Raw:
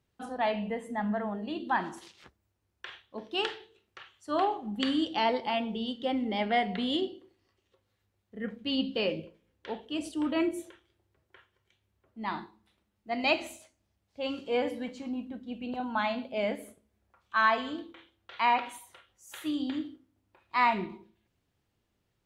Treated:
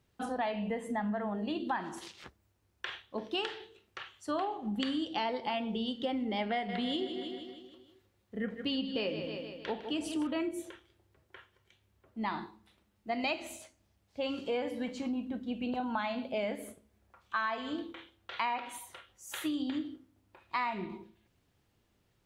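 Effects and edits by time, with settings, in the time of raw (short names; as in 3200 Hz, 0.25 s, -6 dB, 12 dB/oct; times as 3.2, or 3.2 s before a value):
6.53–10.27 feedback echo 0.156 s, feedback 53%, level -11 dB
whole clip: compressor 5:1, threshold -36 dBFS; gain +4.5 dB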